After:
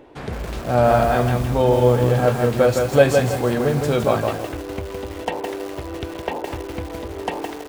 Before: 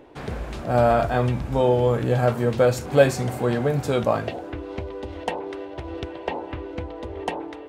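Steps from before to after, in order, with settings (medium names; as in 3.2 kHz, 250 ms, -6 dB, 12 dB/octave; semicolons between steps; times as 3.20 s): bit-crushed delay 163 ms, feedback 35%, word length 6-bit, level -4 dB; trim +2 dB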